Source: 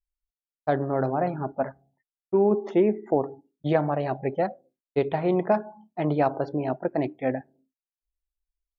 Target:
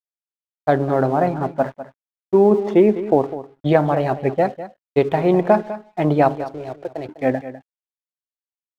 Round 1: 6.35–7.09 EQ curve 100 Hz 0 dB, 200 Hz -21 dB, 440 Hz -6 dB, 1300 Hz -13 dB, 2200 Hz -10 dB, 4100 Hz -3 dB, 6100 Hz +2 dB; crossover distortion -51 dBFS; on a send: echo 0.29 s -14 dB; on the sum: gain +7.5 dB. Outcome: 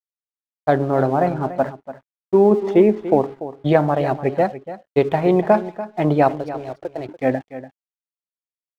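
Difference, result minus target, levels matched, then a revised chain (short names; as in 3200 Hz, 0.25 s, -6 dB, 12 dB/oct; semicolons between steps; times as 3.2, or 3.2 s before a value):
echo 89 ms late
6.35–7.09 EQ curve 100 Hz 0 dB, 200 Hz -21 dB, 440 Hz -6 dB, 1300 Hz -13 dB, 2200 Hz -10 dB, 4100 Hz -3 dB, 6100 Hz +2 dB; crossover distortion -51 dBFS; on a send: echo 0.201 s -14 dB; on the sum: gain +7.5 dB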